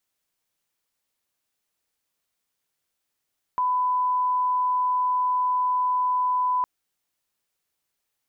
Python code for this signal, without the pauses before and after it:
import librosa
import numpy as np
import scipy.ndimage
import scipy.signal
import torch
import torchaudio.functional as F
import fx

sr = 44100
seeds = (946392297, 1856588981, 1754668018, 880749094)

y = fx.lineup_tone(sr, length_s=3.06, level_db=-20.0)